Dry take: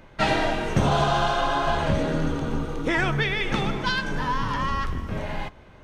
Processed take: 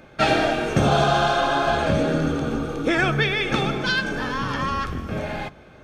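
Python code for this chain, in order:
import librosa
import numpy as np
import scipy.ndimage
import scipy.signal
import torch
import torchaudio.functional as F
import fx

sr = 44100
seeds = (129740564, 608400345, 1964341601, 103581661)

y = fx.hum_notches(x, sr, base_hz=50, count=4)
y = fx.notch_comb(y, sr, f0_hz=990.0)
y = y * 10.0 ** (4.5 / 20.0)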